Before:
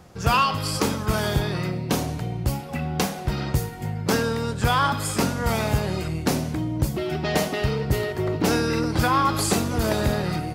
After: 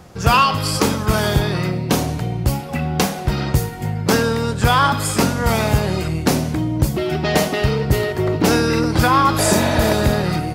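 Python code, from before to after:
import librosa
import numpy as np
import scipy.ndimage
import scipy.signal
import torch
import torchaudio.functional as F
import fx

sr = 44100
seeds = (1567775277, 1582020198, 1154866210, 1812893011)

y = fx.spec_repair(x, sr, seeds[0], start_s=9.41, length_s=0.48, low_hz=460.0, high_hz=4600.0, source='after')
y = y * 10.0 ** (6.0 / 20.0)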